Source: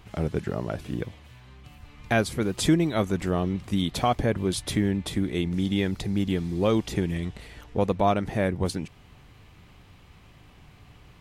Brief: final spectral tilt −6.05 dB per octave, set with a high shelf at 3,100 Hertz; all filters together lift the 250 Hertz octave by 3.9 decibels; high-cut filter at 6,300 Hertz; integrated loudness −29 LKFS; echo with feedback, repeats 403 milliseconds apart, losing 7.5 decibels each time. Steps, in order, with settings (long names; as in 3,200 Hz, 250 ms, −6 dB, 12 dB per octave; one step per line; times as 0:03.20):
low-pass filter 6,300 Hz
parametric band 250 Hz +5.5 dB
high-shelf EQ 3,100 Hz +3 dB
repeating echo 403 ms, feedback 42%, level −7.5 dB
level −5.5 dB